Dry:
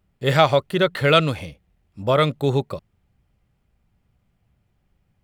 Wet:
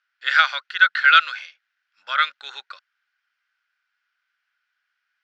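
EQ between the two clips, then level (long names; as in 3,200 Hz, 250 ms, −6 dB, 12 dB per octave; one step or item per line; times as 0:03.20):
high-pass with resonance 1,500 Hz, resonance Q 10
Butterworth low-pass 5,600 Hz 36 dB per octave
spectral tilt +4.5 dB per octave
−7.5 dB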